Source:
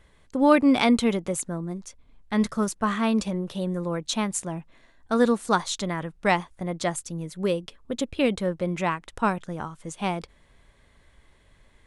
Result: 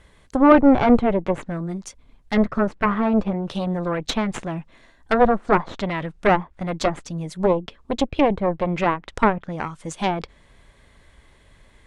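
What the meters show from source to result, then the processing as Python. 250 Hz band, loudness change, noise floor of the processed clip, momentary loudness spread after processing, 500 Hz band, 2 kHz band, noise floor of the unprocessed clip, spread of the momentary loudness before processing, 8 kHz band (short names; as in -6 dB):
+4.0 dB, +4.5 dB, -55 dBFS, 14 LU, +5.5 dB, +3.0 dB, -59 dBFS, 14 LU, -7.0 dB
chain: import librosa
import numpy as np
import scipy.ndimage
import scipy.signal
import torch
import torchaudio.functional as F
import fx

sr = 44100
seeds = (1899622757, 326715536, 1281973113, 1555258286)

y = fx.cheby_harmonics(x, sr, harmonics=(5, 6), levels_db=(-31, -10), full_scale_db=-4.5)
y = fx.env_lowpass_down(y, sr, base_hz=1200.0, full_db=-20.0)
y = y * 10.0 ** (4.5 / 20.0)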